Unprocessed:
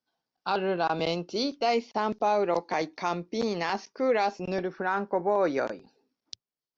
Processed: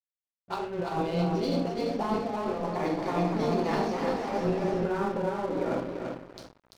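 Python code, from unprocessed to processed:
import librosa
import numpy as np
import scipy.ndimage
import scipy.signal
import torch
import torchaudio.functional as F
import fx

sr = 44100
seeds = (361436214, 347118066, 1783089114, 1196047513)

y = fx.room_shoebox(x, sr, seeds[0], volume_m3=54.0, walls='mixed', distance_m=0.84)
y = fx.over_compress(y, sr, threshold_db=-26.0, ratio=-1.0)
y = fx.low_shelf(y, sr, hz=210.0, db=7.0)
y = fx.hum_notches(y, sr, base_hz=50, count=7)
y = fx.doubler(y, sr, ms=46.0, db=-8.5)
y = fx.dispersion(y, sr, late='highs', ms=47.0, hz=350.0)
y = fx.add_hum(y, sr, base_hz=60, snr_db=24)
y = fx.high_shelf(y, sr, hz=2100.0, db=-8.0)
y = fx.notch(y, sr, hz=1600.0, q=22.0)
y = fx.echo_feedback(y, sr, ms=341, feedback_pct=37, wet_db=-4.5)
y = np.sign(y) * np.maximum(np.abs(y) - 10.0 ** (-38.0 / 20.0), 0.0)
y = fx.echo_warbled(y, sr, ms=249, feedback_pct=58, rate_hz=2.8, cents=215, wet_db=-7.5, at=(2.74, 4.86))
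y = y * 10.0 ** (-4.5 / 20.0)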